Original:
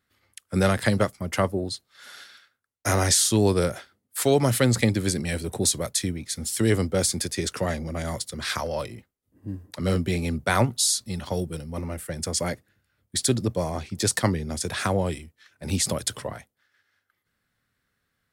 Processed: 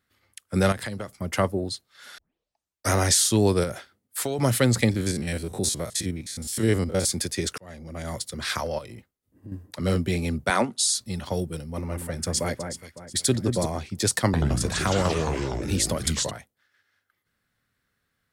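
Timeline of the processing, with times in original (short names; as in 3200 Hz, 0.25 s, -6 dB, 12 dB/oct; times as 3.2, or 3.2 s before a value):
0.72–1.17 compressor 5:1, threshold -30 dBFS
2.18 tape start 0.74 s
3.63–4.39 compressor, threshold -23 dBFS
4.91–7.06 stepped spectrum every 50 ms
7.58–8.27 fade in
8.78–9.52 compressor, threshold -36 dBFS
10.5–10.95 Chebyshev band-pass 200–9600 Hz, order 3
11.68–13.66 echo with dull and thin repeats by turns 0.185 s, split 1900 Hz, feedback 57%, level -5.5 dB
14.25–16.31 echoes that change speed 83 ms, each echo -3 st, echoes 3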